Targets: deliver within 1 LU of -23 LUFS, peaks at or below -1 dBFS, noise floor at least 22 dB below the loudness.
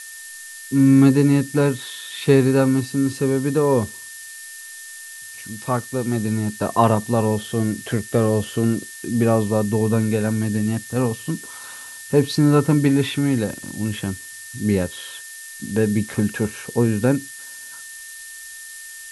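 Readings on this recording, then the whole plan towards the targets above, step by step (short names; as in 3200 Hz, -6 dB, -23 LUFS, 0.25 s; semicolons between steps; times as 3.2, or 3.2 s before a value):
steady tone 1800 Hz; tone level -39 dBFS; noise floor -38 dBFS; noise floor target -42 dBFS; loudness -20.0 LUFS; peak -2.5 dBFS; loudness target -23.0 LUFS
-> notch 1800 Hz, Q 30; denoiser 6 dB, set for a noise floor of -38 dBFS; gain -3 dB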